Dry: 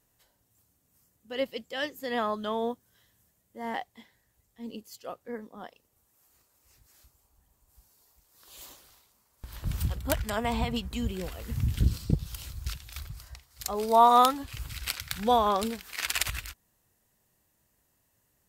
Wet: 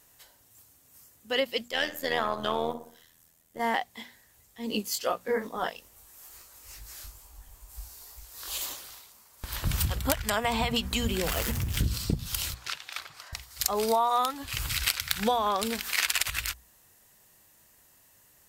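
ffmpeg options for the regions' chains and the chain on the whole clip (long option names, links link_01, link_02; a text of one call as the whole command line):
ffmpeg -i in.wav -filter_complex "[0:a]asettb=1/sr,asplit=3[link_01][link_02][link_03];[link_01]atrim=end=1.684[link_04];[link_02]atrim=start=1.68:end=3.6,asetpts=PTS-STARTPTS,afade=type=in:duration=0.004:curve=qsin,afade=type=out:start_time=1.916:duration=0.004:curve=qsin,aeval=exprs='if(lt(val(0),0),0.708*val(0),val(0))':channel_layout=same,tremolo=f=82:d=0.788,asplit=2[link_05][link_06];[link_06]adelay=60,lowpass=frequency=2000:poles=1,volume=-12.5dB,asplit=2[link_07][link_08];[link_08]adelay=60,lowpass=frequency=2000:poles=1,volume=0.47,asplit=2[link_09][link_10];[link_10]adelay=60,lowpass=frequency=2000:poles=1,volume=0.47,asplit=2[link_11][link_12];[link_12]adelay=60,lowpass=frequency=2000:poles=1,volume=0.47,asplit=2[link_13][link_14];[link_14]adelay=60,lowpass=frequency=2000:poles=1,volume=0.47[link_15];[link_05][link_07][link_09][link_11][link_13][link_15]amix=inputs=6:normalize=0,atrim=end_sample=84672[link_16];[link_03]atrim=start=3.596[link_17];[link_04][link_16]acrossfade=duration=0.004:curve1=hsin:curve2=qsin[link_18];[link_18][link_17]acrossfade=duration=0.004:curve1=qsin:curve2=hsin,asettb=1/sr,asplit=3[link_19][link_20][link_21];[link_19]atrim=end=4.704[link_22];[link_20]atrim=start=4.7:end=8.58,asetpts=PTS-STARTPTS,afade=type=in:duration=0.004:curve=qsin,afade=type=out:start_time=3.876:duration=0.004:curve=qsin,asubboost=boost=5.5:cutoff=72,acontrast=88,flanger=delay=16.5:depth=6.7:speed=2.3[link_23];[link_21]atrim=start=8.576[link_24];[link_22][link_23]acrossfade=duration=0.004:curve1=hsin:curve2=qsin[link_25];[link_25][link_24]acrossfade=duration=0.004:curve1=qsin:curve2=hsin,asettb=1/sr,asplit=3[link_26][link_27][link_28];[link_26]atrim=end=11.274[link_29];[link_27]atrim=start=11.27:end=11.81,asetpts=PTS-STARTPTS,afade=type=in:duration=0.004:curve=qsin,afade=type=out:start_time=0.536:duration=0.004:curve=qsin,aeval=exprs='val(0)+0.5*0.0141*sgn(val(0))':channel_layout=same,equalizer=frequency=4000:width_type=o:width=0.26:gain=-3.5,acompressor=threshold=-32dB:ratio=5:attack=3.2:release=140:knee=1:detection=peak[link_30];[link_28]atrim=start=11.806[link_31];[link_29][link_30]acrossfade=duration=0.004:curve1=hsin:curve2=qsin[link_32];[link_32][link_31]acrossfade=duration=0.004:curve1=qsin:curve2=hsin,asettb=1/sr,asplit=3[link_33][link_34][link_35];[link_33]atrim=end=12.544[link_36];[link_34]atrim=start=12.54:end=13.33,asetpts=PTS-STARTPTS,afade=type=in:duration=0.004:curve=qsin,afade=type=out:start_time=0.786:duration=0.004:curve=qsin,highpass=490,aemphasis=mode=reproduction:type=75fm[link_37];[link_35]atrim=start=13.326[link_38];[link_36][link_37]acrossfade=duration=0.004:curve1=hsin:curve2=qsin[link_39];[link_39][link_38]acrossfade=duration=0.004:curve1=qsin:curve2=hsin,tiltshelf=frequency=670:gain=-4,bandreject=frequency=60:width_type=h:width=6,bandreject=frequency=120:width_type=h:width=6,bandreject=frequency=180:width_type=h:width=6,bandreject=frequency=240:width_type=h:width=6,acompressor=threshold=-32dB:ratio=8,volume=9dB" out.wav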